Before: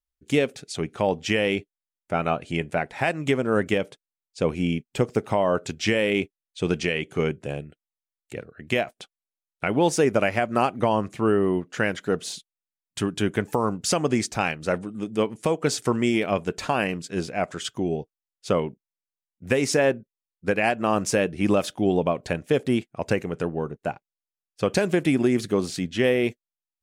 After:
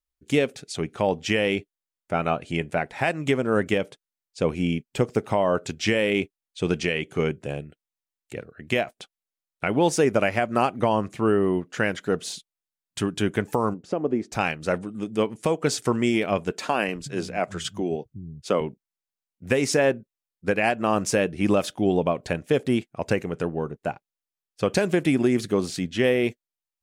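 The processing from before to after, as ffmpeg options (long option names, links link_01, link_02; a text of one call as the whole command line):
ffmpeg -i in.wav -filter_complex "[0:a]asplit=3[link_01][link_02][link_03];[link_01]afade=type=out:start_time=13.73:duration=0.02[link_04];[link_02]bandpass=frequency=370:width_type=q:width=1,afade=type=in:start_time=13.73:duration=0.02,afade=type=out:start_time=14.31:duration=0.02[link_05];[link_03]afade=type=in:start_time=14.31:duration=0.02[link_06];[link_04][link_05][link_06]amix=inputs=3:normalize=0,asettb=1/sr,asplit=3[link_07][link_08][link_09];[link_07]atrim=end=16.514[link_10];[link_08]atrim=start=16.51:end=18.61,asetpts=PTS-STARTPTS,afade=type=in:duration=0.004:curve=qsin,afade=type=out:start_time=2.096:duration=0.004:curve=qsin,acrossover=split=160[link_11][link_12];[link_11]adelay=370[link_13];[link_13][link_12]amix=inputs=2:normalize=0,atrim=end_sample=92610[link_14];[link_09]atrim=start=18.606[link_15];[link_10][link_14]acrossfade=duration=0.004:curve1=hsin:curve2=qsin[link_16];[link_16][link_15]acrossfade=duration=0.004:curve1=qsin:curve2=hsin" out.wav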